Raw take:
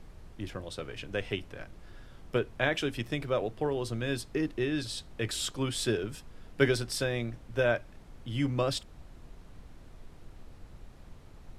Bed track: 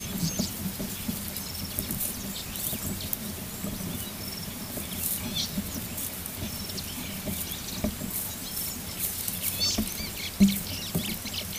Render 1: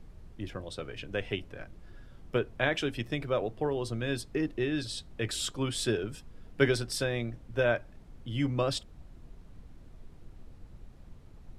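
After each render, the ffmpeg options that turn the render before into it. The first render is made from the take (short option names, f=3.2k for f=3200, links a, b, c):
-af "afftdn=nr=6:nf=-52"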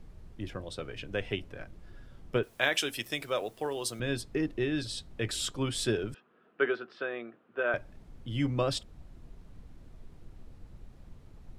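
-filter_complex "[0:a]asettb=1/sr,asplit=3[a][b][c];[a]atrim=end=2.434[d];[b]atrim=start=2.43:end=4,asetpts=PTS-STARTPTS,afade=t=in:d=0.004:c=qsin,afade=t=out:st=1.566:d=0.004:c=qsin,aemphasis=mode=production:type=riaa[e];[c]atrim=start=3.996[f];[d][e]acrossfade=d=0.004:c1=hsin:c2=qsin[g];[g][f]acrossfade=d=0.004:c1=qsin:c2=hsin,asettb=1/sr,asplit=3[h][i][j];[h]atrim=end=6.144[k];[i]atrim=start=6.14:end=7.74,asetpts=PTS-STARTPTS,afade=t=in:d=0.004:c=qsin,afade=t=out:st=1.596:d=0.004:c=qsin,highpass=f=270:w=0.5412,highpass=f=270:w=1.3066,equalizer=f=280:t=q:w=4:g=-9,equalizer=f=550:t=q:w=4:g=-6,equalizer=f=880:t=q:w=4:g=-6,equalizer=f=1.3k:t=q:w=4:g=6,equalizer=f=2.1k:t=q:w=4:g=-7,lowpass=f=2.6k:w=0.5412,lowpass=f=2.6k:w=1.3066[l];[j]atrim=start=7.736[m];[k][l]acrossfade=d=0.004:c1=hsin:c2=qsin[n];[n][m]acrossfade=d=0.004:c1=qsin:c2=hsin"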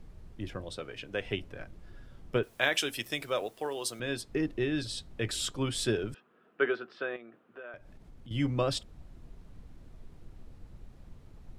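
-filter_complex "[0:a]asettb=1/sr,asplit=3[a][b][c];[a]atrim=end=0.784[d];[b]atrim=start=0.78:end=1.25,asetpts=PTS-STARTPTS,afade=t=in:d=0.004:c=qsin,afade=t=out:st=0.466:d=0.004:c=qsin,lowshelf=f=150:g=-10[e];[c]atrim=start=1.246[f];[d][e]acrossfade=d=0.004:c1=hsin:c2=qsin[g];[g][f]acrossfade=d=0.004:c1=qsin:c2=hsin,asettb=1/sr,asplit=3[h][i][j];[h]atrim=end=3.474[k];[i]atrim=start=3.47:end=4.29,asetpts=PTS-STARTPTS,afade=t=in:d=0.004:c=qsin,afade=t=out:st=0.816:d=0.004:c=qsin,lowshelf=f=170:g=-10[l];[j]atrim=start=4.286[m];[k][l]acrossfade=d=0.004:c1=hsin:c2=qsin[n];[n][m]acrossfade=d=0.004:c1=qsin:c2=hsin,asettb=1/sr,asplit=3[o][p][q];[o]atrim=end=7.164[r];[p]atrim=start=7.16:end=8.31,asetpts=PTS-STARTPTS,afade=t=in:d=0.004:c=qsin,afade=t=out:st=1.146:d=0.004:c=qsin,acompressor=threshold=-47dB:ratio=3:attack=3.2:release=140:knee=1:detection=peak[s];[q]atrim=start=8.306[t];[r][s]acrossfade=d=0.004:c1=hsin:c2=qsin[u];[u][t]acrossfade=d=0.004:c1=qsin:c2=hsin"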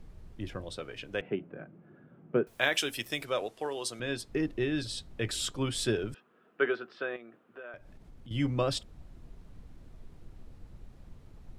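-filter_complex "[0:a]asettb=1/sr,asplit=3[a][b][c];[a]atrim=end=1.214[d];[b]atrim=start=1.21:end=2.47,asetpts=PTS-STARTPTS,afade=t=in:d=0.004:c=qsin,afade=t=out:st=1.256:d=0.004:c=qsin,highpass=f=150:w=0.5412,highpass=f=150:w=1.3066,equalizer=f=160:t=q:w=4:g=9,equalizer=f=240:t=q:w=4:g=3,equalizer=f=360:t=q:w=4:g=4,equalizer=f=1k:t=q:w=4:g=-5,equalizer=f=1.9k:t=q:w=4:g=-7,lowpass=f=2k:w=0.5412,lowpass=f=2k:w=1.3066[e];[c]atrim=start=2.466[f];[d][e]acrossfade=d=0.004:c1=hsin:c2=qsin[g];[g][f]acrossfade=d=0.004:c1=qsin:c2=hsin,asettb=1/sr,asplit=3[h][i][j];[h]atrim=end=3.254[k];[i]atrim=start=3.25:end=4.2,asetpts=PTS-STARTPTS,afade=t=in:d=0.004:c=qsin,afade=t=out:st=0.946:d=0.004:c=qsin,lowpass=9.4k[l];[j]atrim=start=4.196[m];[k][l]acrossfade=d=0.004:c1=hsin:c2=qsin[n];[n][m]acrossfade=d=0.004:c1=qsin:c2=hsin"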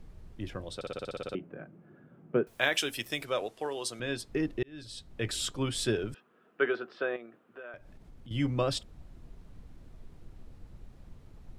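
-filter_complex "[0:a]asettb=1/sr,asplit=3[a][b][c];[a]atrim=end=6.744[d];[b]atrim=start=6.74:end=7.26,asetpts=PTS-STARTPTS,afade=t=in:d=0.004:c=qsin,afade=t=out:st=0.516:d=0.004:c=qsin,equalizer=f=560:w=0.66:g=4.5[e];[c]atrim=start=7.256[f];[d][e]acrossfade=d=0.004:c1=hsin:c2=qsin[g];[g][f]acrossfade=d=0.004:c1=qsin:c2=hsin,asplit=12[h][i][j][k][l][m][n][o][p][q][r][s];[h]atrim=end=0.812[t];[i]atrim=start=0.748:end=0.812[u];[j]atrim=start=0.748:end=0.812[v];[k]atrim=start=0.748:end=0.812[w];[l]atrim=start=0.748:end=0.812[x];[m]atrim=start=0.748:end=0.812[y];[n]atrim=start=0.748:end=0.812[z];[o]atrim=start=0.748:end=0.812[aa];[p]atrim=start=0.748:end=0.812[ab];[q]atrim=start=0.748:end=0.812[ac];[r]atrim=start=1.348:end=4.63,asetpts=PTS-STARTPTS,afade=t=out:st=3.278:d=0.004:c=hsin[ad];[s]atrim=start=4.63,asetpts=PTS-STARTPTS,afade=t=in:d=0.63[ae];[t][u]acrossfade=d=0.004:c1=hsin:c2=hsin[af];[af][v]acrossfade=d=0.004:c1=hsin:c2=hsin[ag];[ag][w]acrossfade=d=0.004:c1=hsin:c2=hsin[ah];[ah][x]acrossfade=d=0.004:c1=hsin:c2=hsin[ai];[ai][y]acrossfade=d=0.004:c1=hsin:c2=hsin[aj];[aj][z]acrossfade=d=0.004:c1=hsin:c2=hsin[ak];[ak][aa]acrossfade=d=0.004:c1=hsin:c2=hsin[al];[al][ab]acrossfade=d=0.004:c1=hsin:c2=hsin[am];[am][ac]acrossfade=d=0.004:c1=hsin:c2=hsin[an];[ad][ae]concat=n=2:v=0:a=1[ao];[an][ao]acrossfade=d=0.004:c1=hsin:c2=hsin"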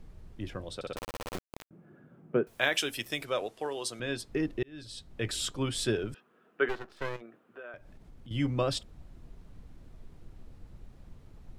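-filter_complex "[0:a]asettb=1/sr,asplit=3[a][b][c];[a]atrim=end=0.964[d];[b]atrim=start=0.96:end=1.71,asetpts=PTS-STARTPTS,afade=t=in:d=0.004:c=qsin,afade=t=out:st=0.746:d=0.004:c=qsin,acrusher=bits=3:dc=4:mix=0:aa=0.000001[e];[c]atrim=start=1.706[f];[d][e]acrossfade=d=0.004:c1=hsin:c2=qsin[g];[g][f]acrossfade=d=0.004:c1=qsin:c2=hsin,asplit=3[h][i][j];[h]afade=t=out:st=6.68:d=0.02[k];[i]aeval=exprs='max(val(0),0)':c=same,afade=t=in:st=6.68:d=0.02,afade=t=out:st=7.2:d=0.02[l];[j]afade=t=in:st=7.2:d=0.02[m];[k][l][m]amix=inputs=3:normalize=0"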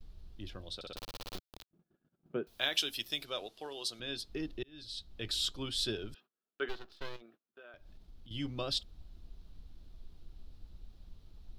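-af "agate=range=-25dB:threshold=-53dB:ratio=16:detection=peak,equalizer=f=125:t=o:w=1:g=-10,equalizer=f=250:t=o:w=1:g=-5,equalizer=f=500:t=o:w=1:g=-8,equalizer=f=1k:t=o:w=1:g=-6,equalizer=f=2k:t=o:w=1:g=-10,equalizer=f=4k:t=o:w=1:g=8,equalizer=f=8k:t=o:w=1:g=-9"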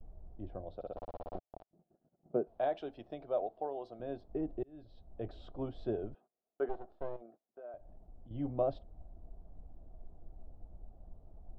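-af "lowpass=f=690:t=q:w=4.4"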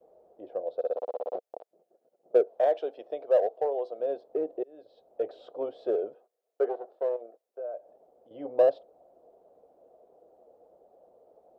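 -filter_complex "[0:a]highpass=f=490:t=q:w=5.6,asplit=2[a][b];[b]volume=26dB,asoftclip=hard,volume=-26dB,volume=-11dB[c];[a][c]amix=inputs=2:normalize=0"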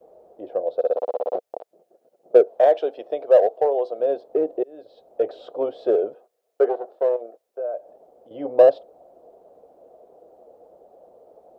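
-af "volume=8.5dB"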